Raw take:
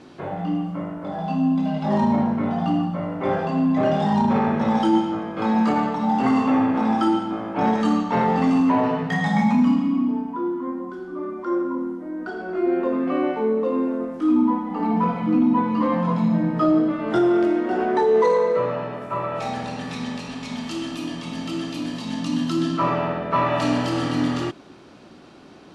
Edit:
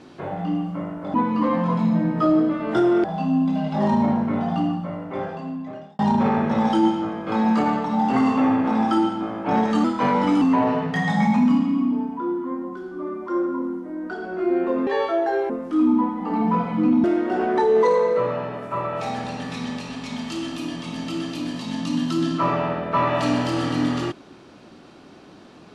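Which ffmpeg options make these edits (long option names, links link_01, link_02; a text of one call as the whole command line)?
ffmpeg -i in.wav -filter_complex "[0:a]asplit=9[link_01][link_02][link_03][link_04][link_05][link_06][link_07][link_08][link_09];[link_01]atrim=end=1.142[link_10];[link_02]atrim=start=15.528:end=17.432[link_11];[link_03]atrim=start=1.138:end=4.09,asetpts=PTS-STARTPTS,afade=type=out:start_time=1.402:duration=1.55[link_12];[link_04]atrim=start=4.09:end=7.944,asetpts=PTS-STARTPTS,afade=type=in:duration=0.004:curve=hsin[link_13];[link_05]atrim=start=7.94:end=8.58,asetpts=PTS-STARTPTS,asetrate=48951,aresample=44100,atrim=end_sample=25427,asetpts=PTS-STARTPTS[link_14];[link_06]atrim=start=8.576:end=13.034[link_15];[link_07]atrim=start=13.03:end=13.99,asetpts=PTS-STARTPTS,asetrate=67032,aresample=44100[link_16];[link_08]atrim=start=13.986:end=15.532[link_17];[link_09]atrim=start=17.428[link_18];[link_10][link_11]acrossfade=duration=0.004:curve1=hsin:curve2=hsin[link_19];[link_12][link_13]concat=n=2:v=0:a=1[link_20];[link_19][link_20]acrossfade=duration=0.004:curve1=hsin:curve2=hsin[link_21];[link_21][link_14]acrossfade=duration=0.004:curve1=hsin:curve2=hsin[link_22];[link_22][link_15]acrossfade=duration=0.004:curve1=hsin:curve2=hsin[link_23];[link_23][link_16]acrossfade=duration=0.004:curve1=hsin:curve2=hsin[link_24];[link_24][link_17]acrossfade=duration=0.004:curve1=hsin:curve2=hsin[link_25];[link_25][link_18]acrossfade=duration=0.004:curve1=hsin:curve2=hsin" out.wav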